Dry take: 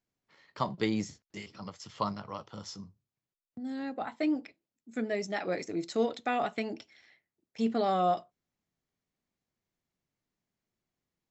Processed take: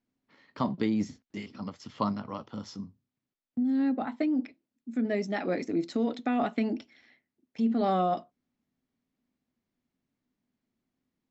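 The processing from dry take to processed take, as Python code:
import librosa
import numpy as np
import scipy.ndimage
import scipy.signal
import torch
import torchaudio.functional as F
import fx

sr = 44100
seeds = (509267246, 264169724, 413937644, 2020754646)

p1 = fx.peak_eq(x, sr, hz=250.0, db=13.5, octaves=0.5)
p2 = fx.over_compress(p1, sr, threshold_db=-26.0, ratio=-0.5)
p3 = p1 + F.gain(torch.from_numpy(p2), 2.5).numpy()
p4 = fx.air_absorb(p3, sr, metres=93.0)
y = F.gain(torch.from_numpy(p4), -7.5).numpy()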